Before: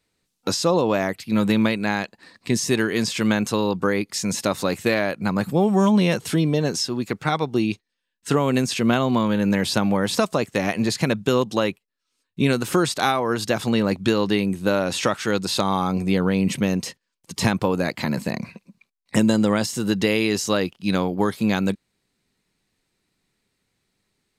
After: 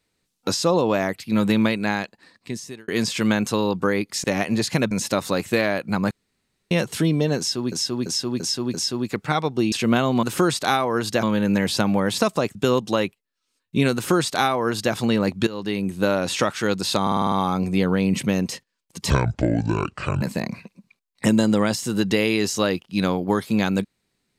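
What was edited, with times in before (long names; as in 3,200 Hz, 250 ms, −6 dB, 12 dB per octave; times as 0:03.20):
0:01.89–0:02.88: fade out
0:05.44–0:06.04: fill with room tone
0:06.71–0:07.05: repeat, 5 plays
0:07.69–0:08.69: remove
0:10.52–0:11.19: move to 0:04.24
0:12.58–0:13.58: duplicate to 0:09.20
0:14.11–0:14.60: fade in linear, from −16 dB
0:15.66: stutter 0.05 s, 7 plays
0:17.44–0:18.12: play speed 61%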